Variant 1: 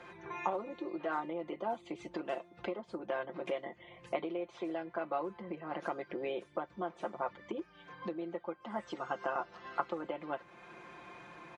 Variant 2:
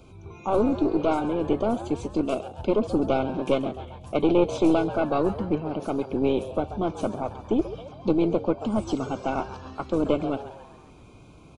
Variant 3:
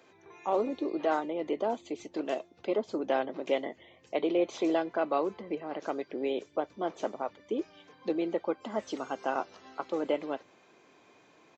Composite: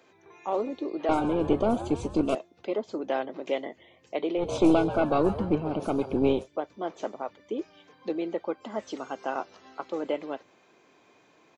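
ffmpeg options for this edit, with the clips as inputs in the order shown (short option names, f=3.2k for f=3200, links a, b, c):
-filter_complex "[1:a]asplit=2[a][b];[2:a]asplit=3[c][d][e];[c]atrim=end=1.092[f];[a]atrim=start=1.088:end=2.352[g];[d]atrim=start=2.348:end=4.52[h];[b]atrim=start=4.36:end=6.48[i];[e]atrim=start=6.32[j];[f][g]acrossfade=d=0.004:c1=hsin:c2=hsin[k];[k][h]acrossfade=d=0.004:c1=hsin:c2=hsin[l];[l][i]acrossfade=d=0.16:c1=tri:c2=tri[m];[m][j]acrossfade=d=0.16:c1=tri:c2=tri"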